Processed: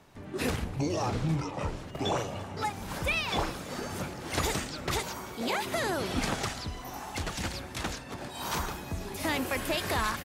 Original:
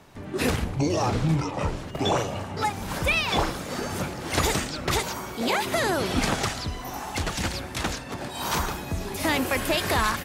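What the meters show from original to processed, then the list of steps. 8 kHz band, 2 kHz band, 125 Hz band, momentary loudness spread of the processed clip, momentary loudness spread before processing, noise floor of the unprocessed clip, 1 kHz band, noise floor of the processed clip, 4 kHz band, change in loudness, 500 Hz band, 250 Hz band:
−6.0 dB, −6.0 dB, −6.0 dB, 8 LU, 8 LU, −37 dBFS, −6.0 dB, −43 dBFS, −6.0 dB, −6.0 dB, −6.0 dB, −6.0 dB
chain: single-tap delay 337 ms −23.5 dB
level −6 dB

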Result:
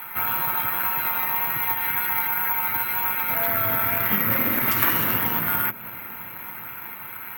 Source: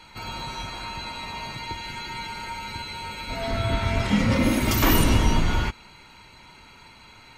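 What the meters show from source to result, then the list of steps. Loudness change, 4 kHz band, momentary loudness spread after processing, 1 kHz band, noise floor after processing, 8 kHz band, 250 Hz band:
+5.0 dB, −6.0 dB, 15 LU, +3.5 dB, −37 dBFS, −4.0 dB, −8.0 dB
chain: adaptive Wiener filter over 9 samples
in parallel at −11 dB: log-companded quantiser 4 bits
on the sum: parametric band 1,600 Hz +15 dB 1.6 octaves
downward compressor 3 to 1, threshold −25 dBFS, peak gain reduction 13.5 dB
amplitude modulation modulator 190 Hz, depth 45%
tape wow and flutter 25 cents
elliptic band-pass filter 110–7,500 Hz
on a send: bucket-brigade delay 393 ms, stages 2,048, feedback 78%, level −19.5 dB
on the sum: bad sample-rate conversion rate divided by 3×, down none, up zero stuff
level +2 dB

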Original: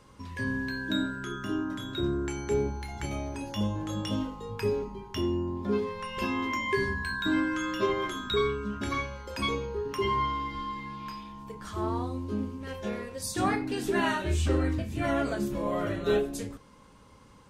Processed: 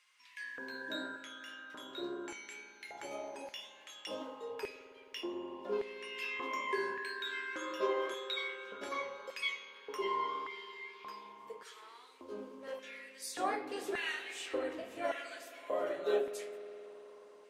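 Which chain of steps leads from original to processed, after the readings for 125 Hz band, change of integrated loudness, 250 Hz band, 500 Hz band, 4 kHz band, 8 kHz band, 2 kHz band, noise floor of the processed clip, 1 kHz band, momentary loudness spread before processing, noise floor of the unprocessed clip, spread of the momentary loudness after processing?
below −30 dB, −9.0 dB, −17.0 dB, −7.5 dB, −6.0 dB, −8.0 dB, −6.5 dB, −58 dBFS, −7.5 dB, 9 LU, −55 dBFS, 14 LU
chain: flanger 1.8 Hz, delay 8.2 ms, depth 9.5 ms, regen −56%
auto-filter high-pass square 0.86 Hz 510–2,200 Hz
spring reverb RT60 4 s, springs 53 ms, chirp 60 ms, DRR 11 dB
level −4.5 dB

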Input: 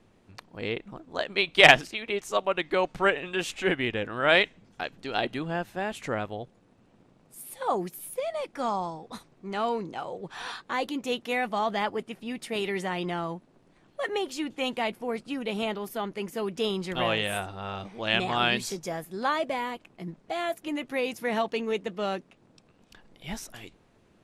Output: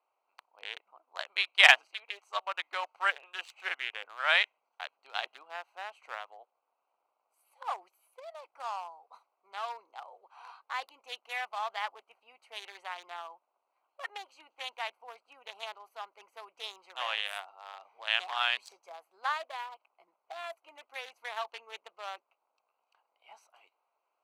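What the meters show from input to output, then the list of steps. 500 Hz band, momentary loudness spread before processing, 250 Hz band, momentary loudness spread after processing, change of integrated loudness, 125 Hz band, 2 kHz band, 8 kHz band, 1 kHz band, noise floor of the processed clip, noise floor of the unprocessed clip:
−16.5 dB, 13 LU, below −35 dB, 19 LU, −4.0 dB, below −40 dB, −3.0 dB, −8.5 dB, −6.5 dB, −83 dBFS, −62 dBFS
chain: adaptive Wiener filter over 25 samples
high-pass filter 860 Hz 24 dB per octave
level −2 dB

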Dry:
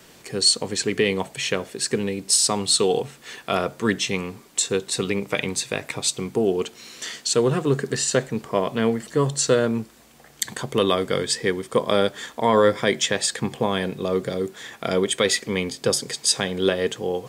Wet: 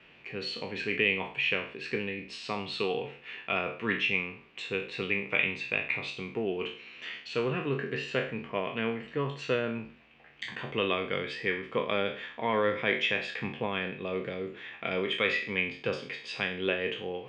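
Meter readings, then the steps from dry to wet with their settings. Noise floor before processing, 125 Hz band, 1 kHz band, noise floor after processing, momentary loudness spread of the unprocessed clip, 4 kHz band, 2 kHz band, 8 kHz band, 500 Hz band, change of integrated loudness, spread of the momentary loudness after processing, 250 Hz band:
−51 dBFS, −10.5 dB, −8.5 dB, −54 dBFS, 10 LU, −11.0 dB, −0.5 dB, below −30 dB, −10.0 dB, −8.5 dB, 11 LU, −10.5 dB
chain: peak hold with a decay on every bin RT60 0.45 s
transistor ladder low-pass 2,800 Hz, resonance 70%

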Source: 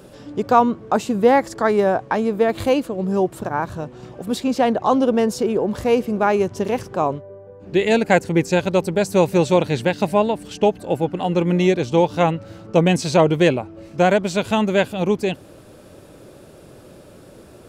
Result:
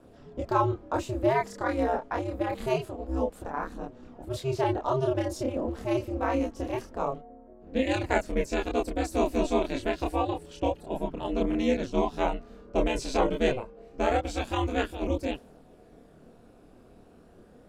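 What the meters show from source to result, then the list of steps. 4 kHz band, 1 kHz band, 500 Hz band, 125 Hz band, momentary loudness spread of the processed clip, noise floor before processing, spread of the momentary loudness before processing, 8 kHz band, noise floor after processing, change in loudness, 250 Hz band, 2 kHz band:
−10.0 dB, −9.5 dB, −10.5 dB, −10.5 dB, 9 LU, −45 dBFS, 8 LU, −10.5 dB, −55 dBFS, −10.0 dB, −10.0 dB, −10.0 dB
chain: ring modulation 130 Hz
multi-voice chorus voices 2, 0.13 Hz, delay 28 ms, depth 2.2 ms
one half of a high-frequency compander decoder only
level −4 dB

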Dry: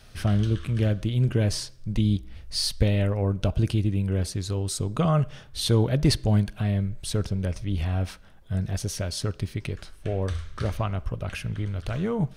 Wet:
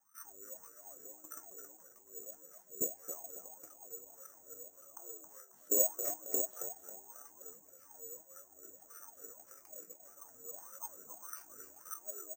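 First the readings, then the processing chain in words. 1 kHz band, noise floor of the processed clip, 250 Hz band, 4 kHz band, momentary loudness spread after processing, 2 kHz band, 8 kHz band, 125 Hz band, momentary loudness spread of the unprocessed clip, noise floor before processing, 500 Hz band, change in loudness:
−18.0 dB, −63 dBFS, −29.0 dB, below −35 dB, 19 LU, below −20 dB, −2.0 dB, below −40 dB, 9 LU, −49 dBFS, −16.0 dB, −13.0 dB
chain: delay that plays each chunk backwards 609 ms, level −7 dB
graphic EQ with 15 bands 630 Hz −4 dB, 1,600 Hz +9 dB, 4,000 Hz −10 dB
ring modulation 180 Hz
output level in coarse steps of 22 dB
resonators tuned to a chord D#2 sus4, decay 0.22 s
LFO wah 1.7 Hz 440–1,300 Hz, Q 18
on a send: echo with shifted repeats 271 ms, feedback 37%, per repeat +72 Hz, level −9 dB
on the sum: bad sample-rate conversion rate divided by 6×, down filtered, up zero stuff
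level +16.5 dB

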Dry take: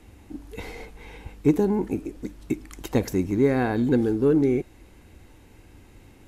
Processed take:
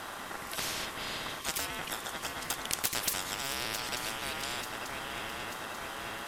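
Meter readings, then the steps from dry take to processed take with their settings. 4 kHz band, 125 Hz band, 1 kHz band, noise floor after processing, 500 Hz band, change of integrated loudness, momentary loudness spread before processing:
+13.0 dB, −19.0 dB, −0.5 dB, −42 dBFS, −18.0 dB, −11.0 dB, 21 LU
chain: ring modulation 1,100 Hz
feedback echo with a long and a short gap by turns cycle 889 ms, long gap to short 3 to 1, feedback 55%, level −18 dB
every bin compressed towards the loudest bin 10 to 1
level +3.5 dB

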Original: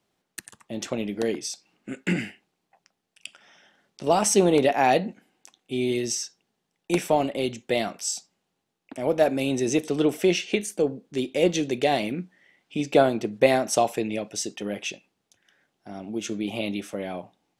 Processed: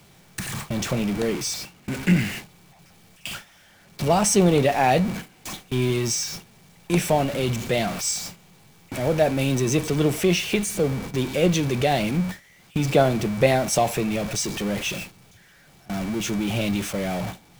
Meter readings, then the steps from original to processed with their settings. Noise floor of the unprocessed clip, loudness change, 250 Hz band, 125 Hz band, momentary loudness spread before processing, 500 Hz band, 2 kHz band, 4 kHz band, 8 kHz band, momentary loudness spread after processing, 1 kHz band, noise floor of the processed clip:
−79 dBFS, +2.0 dB, +3.0 dB, +10.5 dB, 18 LU, +0.5 dB, +3.0 dB, +3.5 dB, +3.5 dB, 14 LU, +1.0 dB, −54 dBFS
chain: converter with a step at zero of −27.5 dBFS
steady tone 2,300 Hz −45 dBFS
noise gate with hold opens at −25 dBFS
low shelf with overshoot 200 Hz +8 dB, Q 1.5

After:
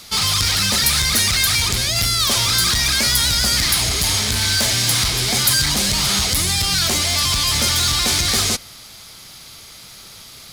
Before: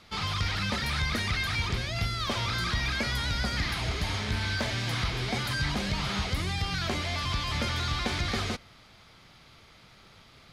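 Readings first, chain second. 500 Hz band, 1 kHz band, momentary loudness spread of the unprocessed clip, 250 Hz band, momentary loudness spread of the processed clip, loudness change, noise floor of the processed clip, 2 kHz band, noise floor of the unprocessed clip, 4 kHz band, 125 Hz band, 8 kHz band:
+7.0 dB, +7.5 dB, 2 LU, +6.5 dB, 2 LU, +14.0 dB, −40 dBFS, +9.0 dB, −55 dBFS, +16.5 dB, +6.0 dB, +25.0 dB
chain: high-shelf EQ 8,200 Hz +11.5 dB
gain into a clipping stage and back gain 26 dB
bass and treble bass −1 dB, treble +14 dB
level +8.5 dB

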